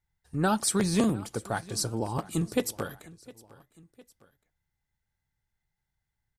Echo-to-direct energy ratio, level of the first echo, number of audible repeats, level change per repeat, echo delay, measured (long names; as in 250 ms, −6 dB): −20.5 dB, −21.5 dB, 2, −5.5 dB, 708 ms